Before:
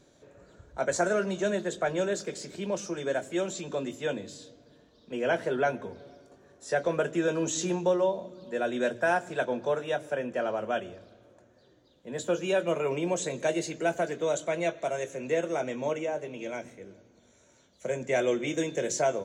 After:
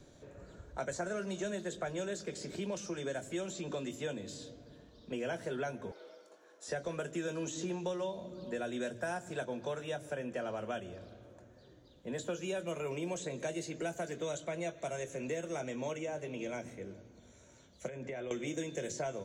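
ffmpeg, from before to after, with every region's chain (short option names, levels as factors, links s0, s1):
-filter_complex "[0:a]asettb=1/sr,asplit=3[s0][s1][s2];[s0]atrim=end=5.914[s3];[s1]atrim=start=5.91:end=6.68,asetpts=PTS-STARTPTS,afade=t=in:d=0.004:c=qsin,afade=t=out:st=0.766:d=0.004:c=qsin,highpass=f=550:w=0.5412,highpass=f=550:w=1.3066,afreqshift=-74[s4];[s2]atrim=start=6.676[s5];[s3][s4]acrossfade=d=0.004:c1=hsin:c2=qsin[s6];[s6][s5]acrossfade=d=0.004:c1=qsin:c2=hsin,asettb=1/sr,asplit=3[s7][s8][s9];[s7]atrim=end=17.884[s10];[s8]atrim=start=17.88:end=18.31,asetpts=PTS-STARTPTS,afade=t=in:d=0.004:c=qsin,afade=t=out:st=0.426:d=0.004:c=qsin,lowpass=3900,acompressor=threshold=0.0126:ratio=6:attack=3.2:release=140:knee=1:detection=peak[s11];[s9]atrim=start=18.306[s12];[s10][s11]acrossfade=d=0.004:c1=hsin:c2=qsin[s13];[s13][s12]acrossfade=d=0.004:c1=qsin:c2=hsin,lowshelf=f=140:g=10.5,acrossover=split=200|1600|5200[s14][s15][s16][s17];[s14]acompressor=threshold=0.00316:ratio=4[s18];[s15]acompressor=threshold=0.0126:ratio=4[s19];[s16]acompressor=threshold=0.00316:ratio=4[s20];[s17]acompressor=threshold=0.00316:ratio=4[s21];[s18][s19][s20][s21]amix=inputs=4:normalize=0"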